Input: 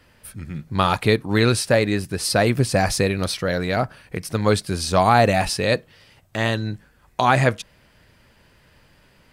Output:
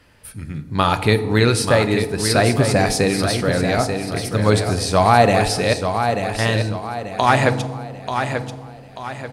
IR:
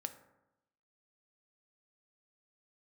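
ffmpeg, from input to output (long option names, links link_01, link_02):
-filter_complex "[0:a]asettb=1/sr,asplit=3[link_01][link_02][link_03];[link_01]atrim=end=5.734[link_04];[link_02]atrim=start=5.73:end=6.39,asetpts=PTS-STARTPTS,afade=type=in:duration=0.004:curve=qsin,afade=type=out:start_time=0.656:duration=0.004:curve=qsin,acompressor=threshold=-34dB:ratio=6[link_05];[link_03]atrim=start=6.386[link_06];[link_04][link_05]acrossfade=duration=0.004:curve1=hsin:curve2=qsin[link_07];[link_07][link_06]acrossfade=duration=0.004:curve1=qsin:curve2=hsin,aecho=1:1:887|1774|2661|3548|4435:0.447|0.179|0.0715|0.0286|0.0114,asplit=2[link_08][link_09];[1:a]atrim=start_sample=2205,asetrate=23373,aresample=44100[link_10];[link_09][link_10]afir=irnorm=-1:irlink=0,volume=8.5dB[link_11];[link_08][link_11]amix=inputs=2:normalize=0,volume=-10dB"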